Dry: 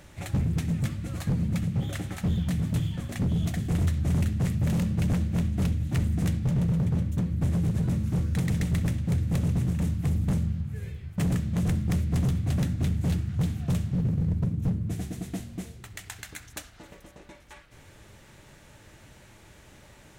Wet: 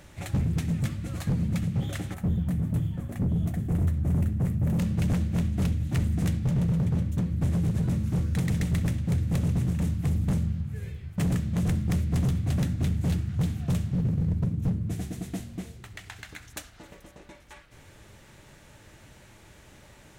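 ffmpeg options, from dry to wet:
-filter_complex "[0:a]asettb=1/sr,asplit=3[a][b][c];[a]atrim=end=2.144[d];[b]atrim=start=2.14:end=4.79,asetpts=PTS-STARTPTS,afade=t=in:d=0.004:c=qsin,afade=t=out:st=2.646:d=0.004:c=qsin,equalizer=f=4.4k:w=0.47:g=-14[e];[c]atrim=start=4.786[f];[d][e]acrossfade=d=0.004:c1=hsin:c2=qsin[g];[g][f]acrossfade=d=0.004:c1=qsin:c2=hsin,asettb=1/sr,asplit=3[h][i][j];[h]atrim=end=15.534[k];[i]atrim=start=15.53:end=16.49,asetpts=PTS-STARTPTS,afade=t=in:d=0.004:c=qsin,afade=t=out:st=0.956:d=0.004:c=qsin,acrossover=split=4800[l][m];[m]acompressor=threshold=-51dB:ratio=4:attack=1:release=60[n];[l][n]amix=inputs=2:normalize=0[o];[j]atrim=start=16.486[p];[k][o]acrossfade=d=0.004:c1=hsin:c2=qsin[q];[q][p]acrossfade=d=0.004:c1=qsin:c2=hsin"

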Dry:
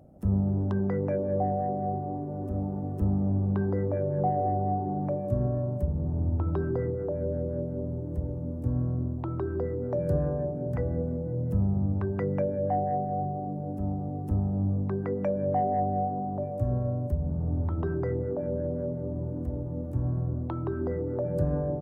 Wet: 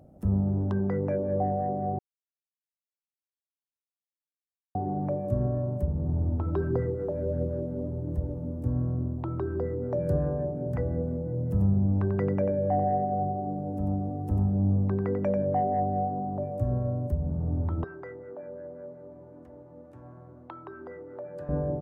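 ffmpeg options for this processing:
-filter_complex "[0:a]asettb=1/sr,asplit=3[a][b][c];[a]atrim=end=6.094[d];[b]atrim=start=6.09:end=8.47,asetpts=PTS-STARTPTS,afade=t=in:d=0.004:c=qsin,afade=t=out:st=2.376:d=0.004:c=qsin,aphaser=in_gain=1:out_gain=1:delay=4.9:decay=0.29:speed=1.5:type=triangular[e];[c]atrim=start=8.466[f];[d][e]acrossfade=d=0.004:c1=hsin:c2=qsin[g];[g][f]acrossfade=d=0.004:c1=qsin:c2=hsin,asettb=1/sr,asplit=3[h][i][j];[h]atrim=end=11.444[k];[i]atrim=start=11.44:end=15.42,asetpts=PTS-STARTPTS,afade=t=in:d=0.004:c=qsin,afade=t=out:st=3.976:d=0.004:c=qsin,aecho=1:1:92:0.473,atrim=end_sample=175518[l];[j]atrim=start=15.416[m];[k][l]acrossfade=d=0.004:c1=hsin:c2=qsin[n];[n][m]acrossfade=d=0.004:c1=qsin:c2=hsin,asettb=1/sr,asplit=3[o][p][q];[o]atrim=end=17.844[r];[p]atrim=start=17.84:end=21.49,asetpts=PTS-STARTPTS,afade=t=in:d=0.004:c=qsin,afade=t=out:st=3.646:d=0.004:c=qsin,bandpass=f=2k:t=q:w=0.73[s];[q]atrim=start=21.486[t];[r][s]acrossfade=d=0.004:c1=hsin:c2=qsin[u];[u][t]acrossfade=d=0.004:c1=qsin:c2=hsin,asplit=3[v][w][x];[v]atrim=end=1.99,asetpts=PTS-STARTPTS,afade=t=out:st=1.986:d=0.004:c=hsin[y];[w]atrim=start=1.99:end=4.75,asetpts=PTS-STARTPTS,volume=0[z];[x]atrim=start=4.75,asetpts=PTS-STARTPTS,afade=t=in:d=0.004:c=hsin[aa];[y][z][aa]concat=n=3:v=0:a=1"

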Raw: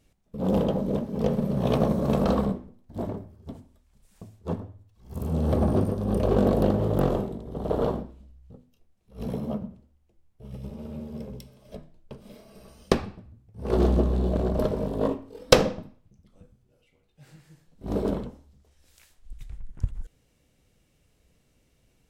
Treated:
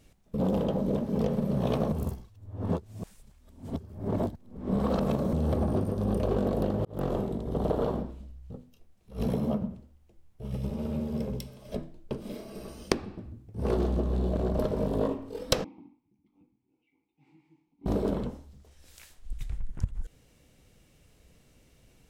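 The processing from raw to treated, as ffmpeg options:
-filter_complex "[0:a]asettb=1/sr,asplit=3[a][b][c];[a]atrim=end=11.764[d];[b]atrim=start=11.76:end=13.6,asetpts=PTS-STARTPTS,afade=t=in:d=0.004:c=qsin,afade=t=out:st=1.836:d=0.004:c=qsin,equalizer=f=320:t=o:w=0.77:g=8.5[e];[c]atrim=start=13.596[f];[d][e]acrossfade=d=0.004:c1=hsin:c2=qsin[g];[g][f]acrossfade=d=0.004:c1=qsin:c2=hsin,asettb=1/sr,asplit=3[h][i][j];[h]atrim=end=15.644[k];[i]atrim=start=15.64:end=17.86,asetpts=PTS-STARTPTS,afade=t=in:d=0.004:c=qsin,afade=t=out:st=2.216:d=0.004:c=qsin,asplit=3[l][m][n];[l]bandpass=f=300:t=q:w=8,volume=0dB[o];[m]bandpass=f=870:t=q:w=8,volume=-6dB[p];[n]bandpass=f=2.24k:t=q:w=8,volume=-9dB[q];[o][p][q]amix=inputs=3:normalize=0[r];[j]atrim=start=17.856[s];[k][r]acrossfade=d=0.004:c1=hsin:c2=qsin[t];[t][s]acrossfade=d=0.004:c1=qsin:c2=hsin,asplit=4[u][v][w][x];[u]atrim=end=1.922[y];[v]atrim=start=1.918:end=5.332,asetpts=PTS-STARTPTS,areverse[z];[w]atrim=start=5.328:end=6.85,asetpts=PTS-STARTPTS,afade=t=out:st=1.518:d=0.004:c=hsin[aa];[x]atrim=start=6.85,asetpts=PTS-STARTPTS,afade=t=in:d=0.65[ab];[y][z]acrossfade=d=0.004:c1=hsin:c2=hsin[ac];[aa][ab]concat=n=2:v=0:a=1[ad];[ac][ad]acrossfade=d=0.004:c1=hsin:c2=hsin,acompressor=threshold=-30dB:ratio=6,volume=5.5dB"

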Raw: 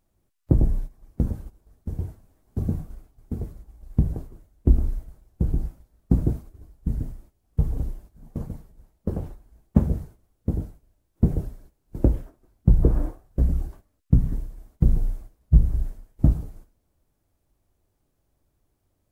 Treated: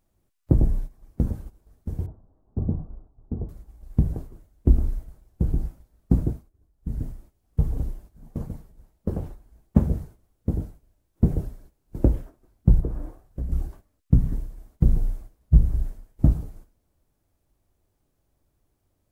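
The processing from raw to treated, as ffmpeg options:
-filter_complex "[0:a]asettb=1/sr,asplit=3[a][b][c];[a]atrim=end=2.064[d];[b]atrim=start=2.06:end=3.49,asetpts=PTS-STARTPTS,afade=t=in:d=0.004:c=qsin,afade=t=out:st=1.426:d=0.004:c=qsin,lowpass=f=1.1k:w=0.5412,lowpass=f=1.1k:w=1.3066[e];[c]atrim=start=3.486[f];[d][e]acrossfade=d=0.004:c1=hsin:c2=qsin[g];[g][f]acrossfade=d=0.004:c1=qsin:c2=hsin,asettb=1/sr,asplit=3[h][i][j];[h]atrim=end=12.804[k];[i]atrim=start=12.8:end=13.52,asetpts=PTS-STARTPTS,afade=t=in:d=0.004:c=qsin,afade=t=out:st=0.716:d=0.004:c=qsin,acompressor=threshold=-42dB:ratio=1.5:attack=3.2:release=140:knee=1:detection=peak[l];[j]atrim=start=13.516[m];[k][l]acrossfade=d=0.004:c1=hsin:c2=qsin[n];[n][m]acrossfade=d=0.004:c1=qsin:c2=hsin,asplit=3[o][p][q];[o]atrim=end=6.49,asetpts=PTS-STARTPTS,afade=t=out:st=6.18:d=0.31:silence=0.149624[r];[p]atrim=start=6.49:end=6.73,asetpts=PTS-STARTPTS,volume=-16.5dB[s];[q]atrim=start=6.73,asetpts=PTS-STARTPTS,afade=t=in:d=0.31:silence=0.149624[t];[r][s][t]concat=n=3:v=0:a=1"

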